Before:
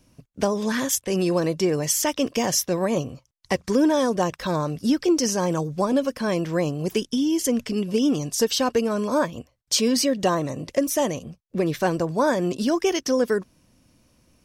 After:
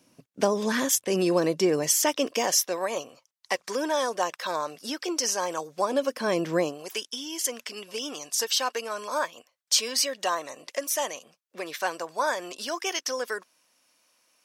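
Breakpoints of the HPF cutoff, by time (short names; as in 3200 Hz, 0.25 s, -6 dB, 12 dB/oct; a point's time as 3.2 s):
1.78 s 230 Hz
2.88 s 670 Hz
5.65 s 670 Hz
6.55 s 210 Hz
6.85 s 860 Hz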